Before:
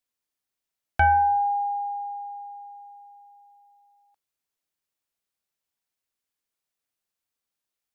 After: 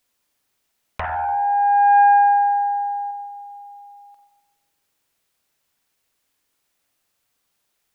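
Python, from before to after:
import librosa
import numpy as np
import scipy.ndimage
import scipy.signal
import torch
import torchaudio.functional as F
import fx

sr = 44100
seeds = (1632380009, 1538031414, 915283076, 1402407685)

y = fx.peak_eq(x, sr, hz=1500.0, db=5.5, octaves=2.4, at=(1.06, 3.11))
y = fx.over_compress(y, sr, threshold_db=-28.0, ratio=-1.0)
y = fx.rev_spring(y, sr, rt60_s=1.1, pass_ms=(42, 49), chirp_ms=65, drr_db=4.5)
y = fx.doppler_dist(y, sr, depth_ms=0.87)
y = y * librosa.db_to_amplitude(8.0)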